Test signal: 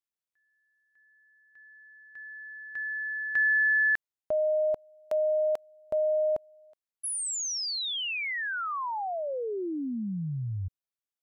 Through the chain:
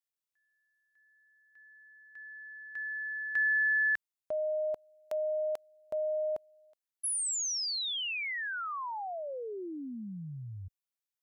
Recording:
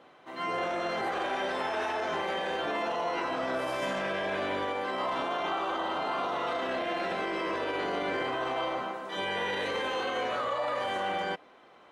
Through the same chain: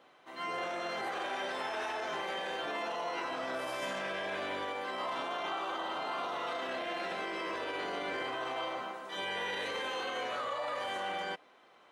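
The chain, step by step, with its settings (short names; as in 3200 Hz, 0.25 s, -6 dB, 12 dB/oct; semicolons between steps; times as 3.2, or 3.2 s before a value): tilt +1.5 dB/oct; gain -5 dB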